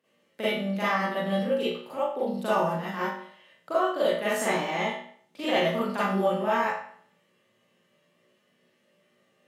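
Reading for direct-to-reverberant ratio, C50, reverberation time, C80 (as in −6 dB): −11.5 dB, −2.5 dB, 0.55 s, 4.0 dB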